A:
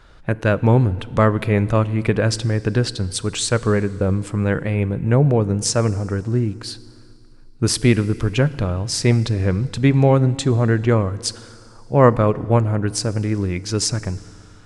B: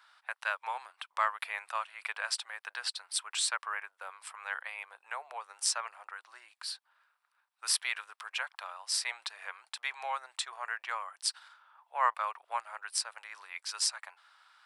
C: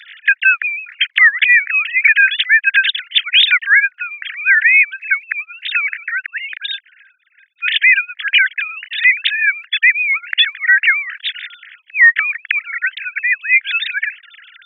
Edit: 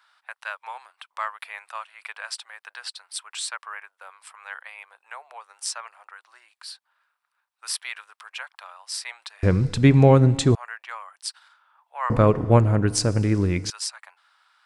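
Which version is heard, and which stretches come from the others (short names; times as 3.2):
B
9.43–10.55 from A
12.1–13.7 from A
not used: C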